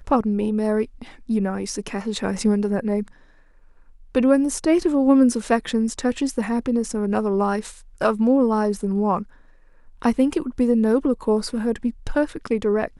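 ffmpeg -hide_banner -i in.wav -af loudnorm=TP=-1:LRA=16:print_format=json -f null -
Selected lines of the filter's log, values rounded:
"input_i" : "-21.8",
"input_tp" : "-4.8",
"input_lra" : "2.5",
"input_thresh" : "-32.2",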